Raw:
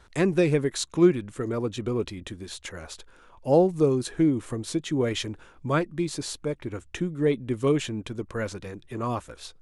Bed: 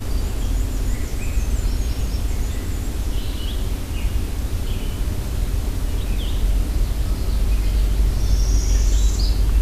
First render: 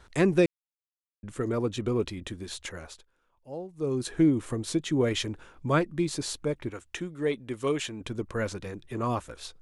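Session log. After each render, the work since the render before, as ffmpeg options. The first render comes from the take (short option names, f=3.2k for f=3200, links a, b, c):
-filter_complex "[0:a]asettb=1/sr,asplit=3[a][b][c];[a]atrim=end=6.704[d];[b]atrim=start=6.7:end=8.01,asetpts=PTS-STARTPTS,afade=t=in:d=0.004:c=qsin,afade=t=out:st=1.306:d=0.004:c=qsin,lowshelf=f=360:g=-11[e];[c]atrim=start=8.006[f];[d][e]acrossfade=d=0.004:c1=hsin:c2=qsin[g];[g][f]acrossfade=d=0.004:c1=qsin:c2=hsin,asplit=5[h][i][j][k][l];[h]atrim=end=0.46,asetpts=PTS-STARTPTS,afade=t=out:st=0.456:d=0.004:c=hsin[m];[i]atrim=start=0.46:end=1.23,asetpts=PTS-STARTPTS,volume=0[n];[j]atrim=start=1.23:end=3.07,asetpts=PTS-STARTPTS,afade=t=in:d=0.004:c=hsin,afade=t=out:st=1.35:d=0.49:c=qsin:silence=0.112202[o];[k]atrim=start=3.07:end=3.76,asetpts=PTS-STARTPTS,volume=-19dB[p];[l]atrim=start=3.76,asetpts=PTS-STARTPTS,afade=t=in:d=0.49:c=qsin:silence=0.112202[q];[m][n][o][p][q]concat=n=5:v=0:a=1"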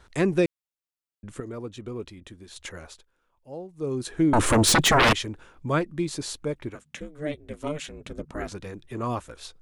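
-filter_complex "[0:a]asettb=1/sr,asplit=3[a][b][c];[a]atrim=end=4.334[d];[b]atrim=start=4.33:end=5.13,asetpts=PTS-STARTPTS,afade=t=in:d=0.004:c=qsin,afade=t=out:st=0.796:d=0.004:c=qsin,aeval=exprs='0.188*sin(PI/2*6.31*val(0)/0.188)':c=same[e];[c]atrim=start=5.126[f];[d][e]acrossfade=d=0.004:c1=hsin:c2=qsin[g];[g][f]acrossfade=d=0.004:c1=qsin:c2=hsin,asettb=1/sr,asplit=3[h][i][j];[h]atrim=end=6.754[k];[i]atrim=start=6.75:end=8.52,asetpts=PTS-STARTPTS,afade=t=in:d=0.004:c=qsin,afade=t=out:st=1.766:d=0.004:c=qsin,aeval=exprs='val(0)*sin(2*PI*150*n/s)':c=same[l];[j]atrim=start=8.516[m];[k][l]acrossfade=d=0.004:c1=hsin:c2=qsin[n];[n][m]acrossfade=d=0.004:c1=qsin:c2=hsin,asplit=3[o][p][q];[o]atrim=end=1.402[r];[p]atrim=start=1.398:end=2.562,asetpts=PTS-STARTPTS,volume=-7.5dB[s];[q]atrim=start=2.558[t];[r][s]acrossfade=d=0.004:c1=hsin:c2=hsin[u];[u][t]acrossfade=d=0.004:c1=hsin:c2=hsin"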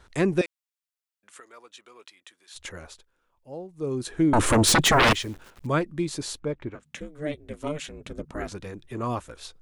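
-filter_complex "[0:a]asettb=1/sr,asplit=3[a][b][c];[a]atrim=end=0.414[d];[b]atrim=start=0.41:end=2.55,asetpts=PTS-STARTPTS,afade=t=in:d=0.004:c=qsin,afade=t=out:st=2.136:d=0.004:c=qsin,highpass=1.1k[e];[c]atrim=start=2.546[f];[d][e]acrossfade=d=0.004:c1=hsin:c2=qsin[g];[g][f]acrossfade=d=0.004:c1=qsin:c2=hsin,asettb=1/sr,asplit=3[h][i][j];[h]atrim=end=4.934[k];[i]atrim=start=4.93:end=5.67,asetpts=PTS-STARTPTS,afade=t=in:d=0.004:c=qsin,afade=t=out:st=0.736:d=0.004:c=qsin,acrusher=bits=9:dc=4:mix=0:aa=0.000001[l];[j]atrim=start=5.666[m];[k][l]acrossfade=d=0.004:c1=hsin:c2=qsin[n];[n][m]acrossfade=d=0.004:c1=qsin:c2=hsin,asettb=1/sr,asplit=3[o][p][q];[o]atrim=end=6.394[r];[p]atrim=start=6.39:end=6.83,asetpts=PTS-STARTPTS,afade=t=in:d=0.004:c=qsin,afade=t=out:st=0.436:d=0.004:c=qsin,adynamicsmooth=sensitivity=3:basefreq=3.5k[s];[q]atrim=start=6.826[t];[r][s]acrossfade=d=0.004:c1=hsin:c2=qsin[u];[u][t]acrossfade=d=0.004:c1=qsin:c2=hsin"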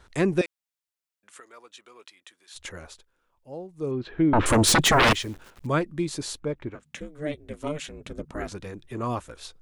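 -filter_complex "[0:a]asettb=1/sr,asplit=3[a][b][c];[a]atrim=end=3.914[d];[b]atrim=start=3.91:end=4.46,asetpts=PTS-STARTPTS,afade=t=in:d=0.004:c=qsin,afade=t=out:st=0.546:d=0.004:c=qsin,lowpass=f=3.4k:w=0.5412,lowpass=f=3.4k:w=1.3066[e];[c]atrim=start=4.456[f];[d][e]acrossfade=d=0.004:c1=hsin:c2=qsin[g];[g][f]acrossfade=d=0.004:c1=qsin:c2=hsin"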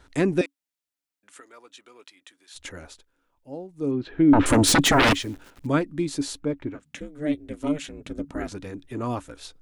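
-af "equalizer=f=280:w=7.6:g=12.5,bandreject=f=1.1k:w=15"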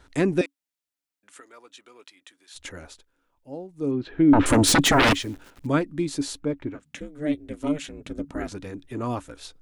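-af anull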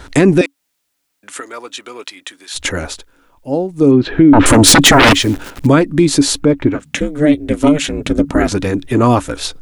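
-filter_complex "[0:a]asplit=2[a][b];[b]acompressor=threshold=-28dB:ratio=6,volume=3dB[c];[a][c]amix=inputs=2:normalize=0,alimiter=level_in=12dB:limit=-1dB:release=50:level=0:latency=1"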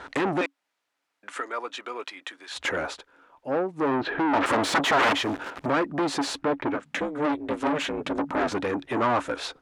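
-af "asoftclip=type=tanh:threshold=-16dB,bandpass=f=1k:t=q:w=0.71:csg=0"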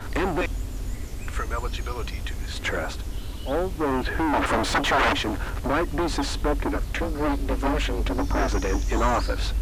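-filter_complex "[1:a]volume=-9dB[a];[0:a][a]amix=inputs=2:normalize=0"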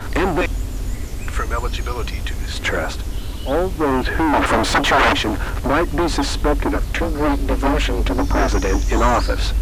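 -af "volume=6.5dB"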